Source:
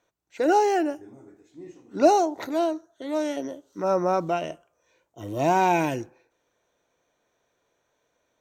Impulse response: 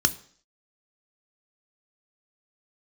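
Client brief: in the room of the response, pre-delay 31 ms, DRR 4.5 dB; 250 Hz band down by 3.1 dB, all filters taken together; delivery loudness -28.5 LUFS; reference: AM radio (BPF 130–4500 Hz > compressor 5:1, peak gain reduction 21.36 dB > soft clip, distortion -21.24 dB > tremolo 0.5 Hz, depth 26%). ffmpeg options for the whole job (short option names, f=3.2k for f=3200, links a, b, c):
-filter_complex "[0:a]equalizer=f=250:t=o:g=-4.5,asplit=2[a][b];[1:a]atrim=start_sample=2205,adelay=31[c];[b][c]afir=irnorm=-1:irlink=0,volume=-15.5dB[d];[a][d]amix=inputs=2:normalize=0,highpass=130,lowpass=4.5k,acompressor=threshold=-37dB:ratio=5,asoftclip=threshold=-29dB,tremolo=f=0.5:d=0.26,volume=14dB"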